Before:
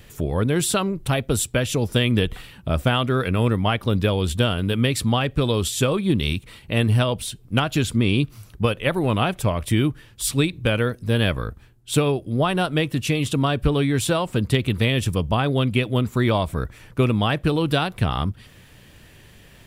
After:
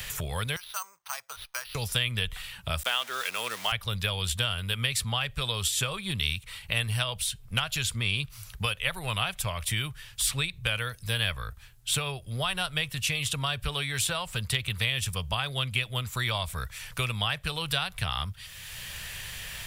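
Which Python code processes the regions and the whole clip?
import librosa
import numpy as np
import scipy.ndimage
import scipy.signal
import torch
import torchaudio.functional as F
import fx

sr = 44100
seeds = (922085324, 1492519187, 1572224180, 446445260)

y = fx.chain(x, sr, fx.ladder_bandpass(hz=1200.0, resonance_pct=45),
    fx.resample_bad(factor=6, down='none', up='hold'), at=(0.56, 1.75))
y = fx.chain(y, sr, fx.sample_gate(floor_db=-32.5),
    fx.highpass(hz=290.0, slope=24), at=(2.83, 3.72))
y = fx.tone_stack(y, sr, knobs='10-0-10')
y = fx.band_squash(y, sr, depth_pct=70)
y = y * librosa.db_to_amplitude(1.5)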